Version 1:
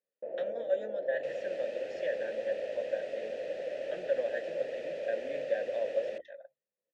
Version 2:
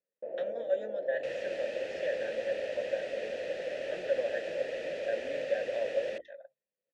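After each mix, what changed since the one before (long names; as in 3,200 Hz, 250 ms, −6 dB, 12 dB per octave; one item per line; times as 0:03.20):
second sound +6.0 dB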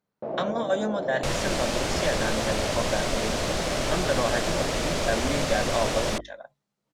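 master: remove formant filter e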